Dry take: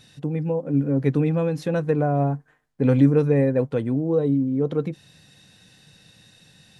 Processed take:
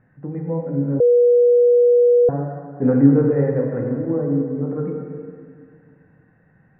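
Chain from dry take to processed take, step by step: steep low-pass 1.9 kHz 48 dB/octave; plate-style reverb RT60 2.2 s, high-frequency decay 0.85×, DRR -1 dB; 1.00–2.29 s: bleep 484 Hz -6.5 dBFS; 2.81–3.31 s: dynamic bell 280 Hz, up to +5 dB, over -25 dBFS, Q 0.74; trim -3.5 dB

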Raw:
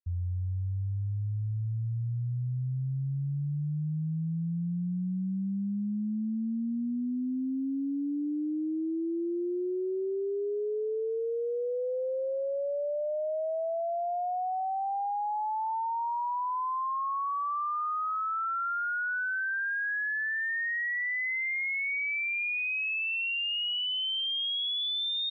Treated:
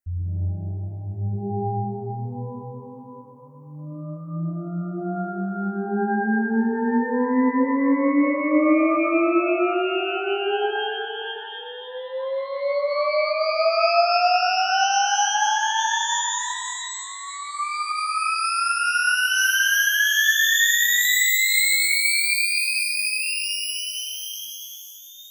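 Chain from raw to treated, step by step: static phaser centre 710 Hz, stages 8; 22.78–23.23 s: frequency shift -140 Hz; pitch-shifted reverb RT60 2.1 s, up +12 st, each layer -2 dB, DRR 2 dB; trim +8.5 dB

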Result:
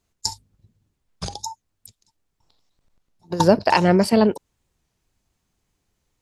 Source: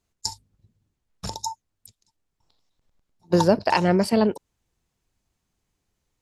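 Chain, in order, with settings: 1.26–3.40 s: compression 4:1, threshold -31 dBFS, peak gain reduction 14.5 dB; warped record 33 1/3 rpm, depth 160 cents; trim +3.5 dB

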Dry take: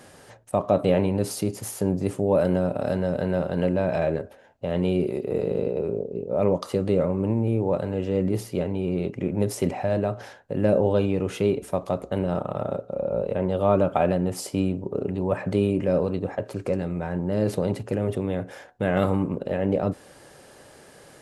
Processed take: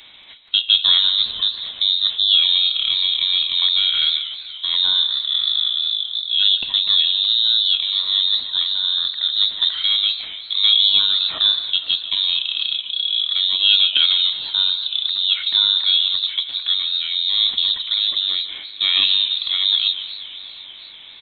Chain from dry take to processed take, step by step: delay 149 ms -14 dB; frequency inversion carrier 3.9 kHz; modulated delay 239 ms, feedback 72%, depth 146 cents, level -16 dB; trim +5 dB

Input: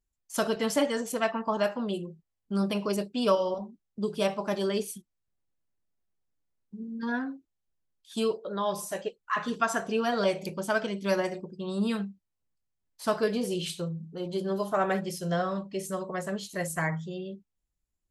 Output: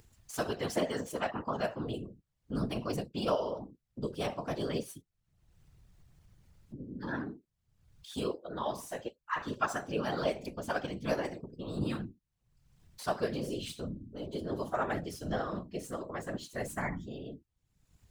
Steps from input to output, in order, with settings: median filter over 3 samples; whisper effect; upward compressor, threshold -34 dBFS; trim -6 dB

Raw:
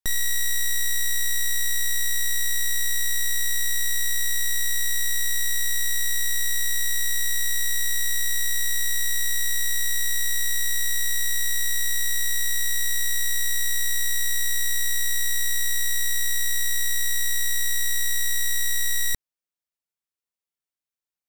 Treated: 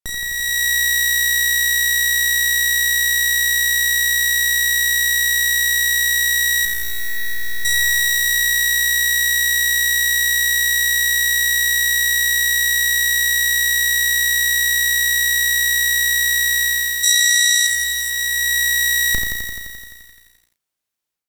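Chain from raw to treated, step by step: Chebyshev shaper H 8 -21 dB, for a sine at -20 dBFS; 17.03–17.67 s: frequency weighting ITU-R 468; flutter echo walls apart 5.9 m, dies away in 0.27 s; 6.65–7.65 s: integer overflow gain 28 dB; level rider gain up to 11 dB; bit-crushed delay 86 ms, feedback 80%, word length 8-bit, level -6 dB; trim -1.5 dB

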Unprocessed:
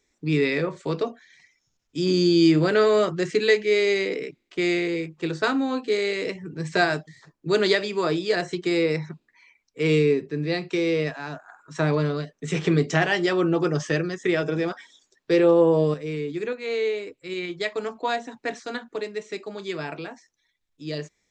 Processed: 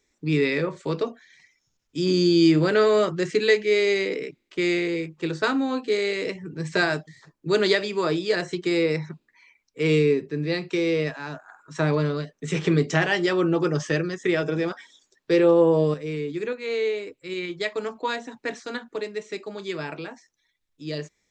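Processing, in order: band-stop 710 Hz, Q 19

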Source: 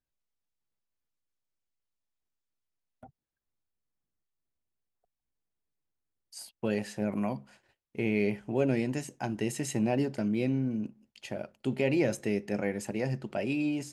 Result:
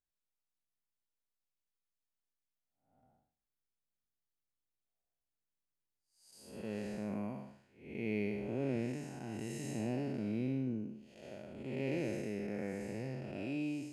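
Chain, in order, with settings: spectral blur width 279 ms; 10.67–11.35 s: peaking EQ 410 Hz +6 dB 0.77 oct; trim -5.5 dB

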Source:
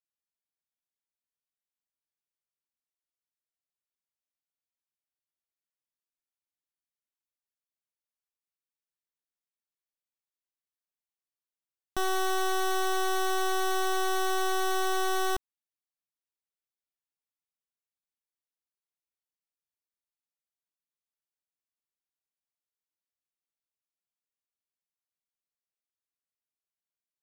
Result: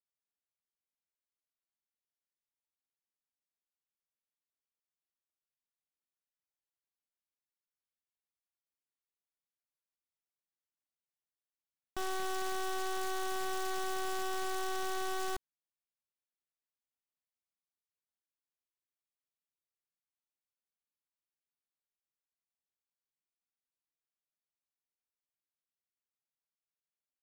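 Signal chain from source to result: delay time shaken by noise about 4.9 kHz, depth 0.04 ms; trim -8 dB

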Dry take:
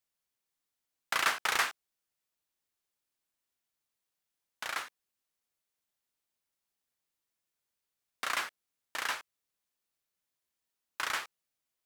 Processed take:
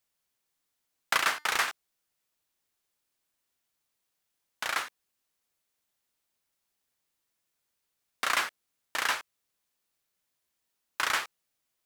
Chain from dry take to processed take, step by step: 1.17–1.68 s: feedback comb 300 Hz, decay 0.35 s, harmonics all, mix 40%; trim +5.5 dB

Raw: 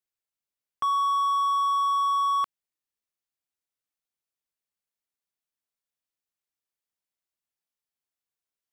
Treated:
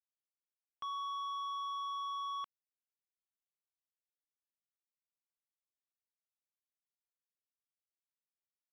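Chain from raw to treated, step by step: power-law waveshaper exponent 3; overload inside the chain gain 35.5 dB; resonant high shelf 5.2 kHz -12.5 dB, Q 3; trim -2 dB

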